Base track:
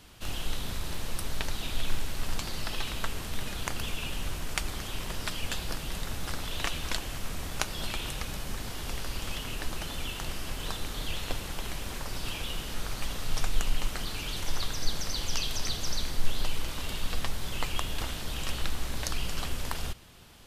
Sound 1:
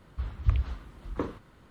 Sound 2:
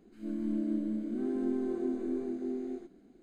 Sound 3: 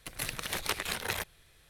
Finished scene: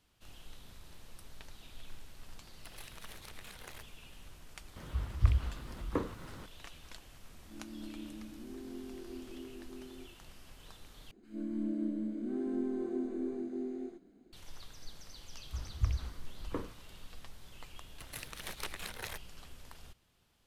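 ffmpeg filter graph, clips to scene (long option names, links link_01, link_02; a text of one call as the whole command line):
ffmpeg -i bed.wav -i cue0.wav -i cue1.wav -i cue2.wav -filter_complex "[3:a]asplit=2[link_01][link_02];[1:a]asplit=2[link_03][link_04];[2:a]asplit=2[link_05][link_06];[0:a]volume=-19dB[link_07];[link_01]acompressor=threshold=-41dB:ratio=6:attack=3.2:release=140:knee=1:detection=peak[link_08];[link_03]acompressor=mode=upward:threshold=-36dB:ratio=2.5:attack=3.2:release=140:knee=2.83:detection=peak[link_09];[link_07]asplit=2[link_10][link_11];[link_10]atrim=end=11.114[link_12];[link_06]atrim=end=3.22,asetpts=PTS-STARTPTS,volume=-3dB[link_13];[link_11]atrim=start=14.326[link_14];[link_08]atrim=end=1.69,asetpts=PTS-STARTPTS,volume=-7dB,afade=type=in:duration=0.004:curve=hsin,afade=type=out:start_time=1.686:duration=0.004:curve=hsin,adelay=2590[link_15];[link_09]atrim=end=1.7,asetpts=PTS-STARTPTS,volume=-1.5dB,afade=type=in:duration=0.004:curve=hsin,afade=type=out:start_time=1.696:duration=0.004:curve=hsin,adelay=4760[link_16];[link_05]atrim=end=3.22,asetpts=PTS-STARTPTS,volume=-13.5dB,afade=type=in:duration=0.004:curve=hsin,afade=type=out:start_time=3.216:duration=0.004:curve=hsin,adelay=7280[link_17];[link_04]atrim=end=1.7,asetpts=PTS-STARTPTS,volume=-6.5dB,afade=type=in:duration=0.004:curve=hsin,afade=type=out:start_time=1.696:duration=0.004:curve=hsin,adelay=15350[link_18];[link_02]atrim=end=1.69,asetpts=PTS-STARTPTS,volume=-9.5dB,afade=type=in:duration=0.004:curve=hsin,afade=type=out:start_time=1.686:duration=0.004:curve=hsin,adelay=17940[link_19];[link_12][link_13]acrossfade=duration=0.004:curve1=hsin:curve2=hsin[link_20];[link_20][link_14]acrossfade=duration=0.004:curve1=hsin:curve2=hsin[link_21];[link_21][link_15][link_16][link_17][link_18][link_19]amix=inputs=6:normalize=0" out.wav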